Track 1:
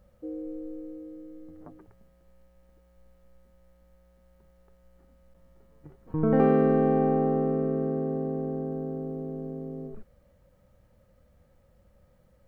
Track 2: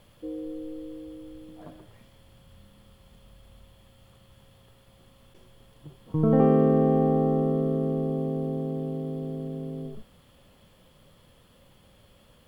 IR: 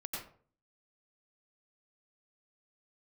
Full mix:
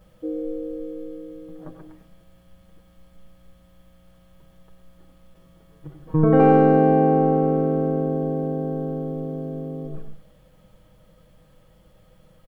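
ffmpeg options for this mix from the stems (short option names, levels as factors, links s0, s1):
-filter_complex "[0:a]aecho=1:1:6.3:0.82,volume=1.26,asplit=2[s0][s1];[s1]volume=0.596[s2];[1:a]adelay=7.3,volume=0.473[s3];[2:a]atrim=start_sample=2205[s4];[s2][s4]afir=irnorm=-1:irlink=0[s5];[s0][s3][s5]amix=inputs=3:normalize=0"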